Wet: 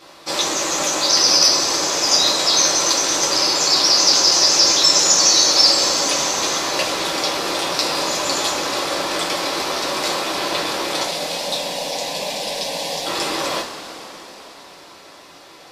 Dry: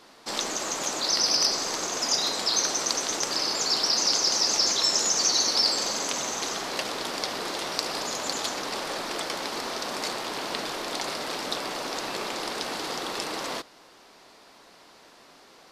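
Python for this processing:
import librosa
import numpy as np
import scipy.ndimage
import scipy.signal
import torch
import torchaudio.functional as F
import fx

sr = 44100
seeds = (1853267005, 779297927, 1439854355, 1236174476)

y = fx.fixed_phaser(x, sr, hz=350.0, stages=6, at=(11.03, 13.06))
y = fx.rev_double_slope(y, sr, seeds[0], early_s=0.24, late_s=4.4, knee_db=-19, drr_db=-5.0)
y = y * 10.0 ** (3.5 / 20.0)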